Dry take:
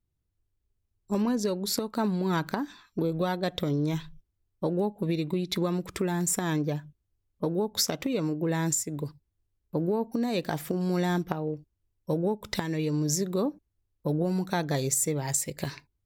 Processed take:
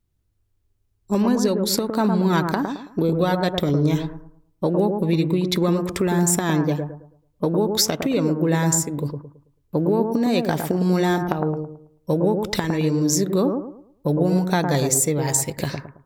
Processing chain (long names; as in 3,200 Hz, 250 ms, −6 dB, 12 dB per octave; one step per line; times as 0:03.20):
bucket-brigade delay 109 ms, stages 1,024, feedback 32%, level −5 dB
level +7 dB